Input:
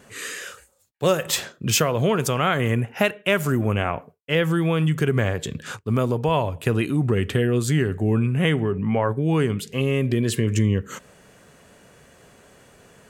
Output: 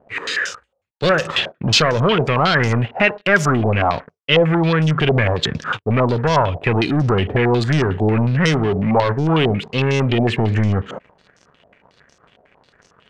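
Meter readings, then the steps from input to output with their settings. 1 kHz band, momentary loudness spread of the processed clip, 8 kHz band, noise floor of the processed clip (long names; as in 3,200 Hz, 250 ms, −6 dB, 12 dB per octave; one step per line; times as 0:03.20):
+8.0 dB, 6 LU, −3.0 dB, −65 dBFS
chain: leveller curve on the samples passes 3
low-pass on a step sequencer 11 Hz 690–5,700 Hz
level −4 dB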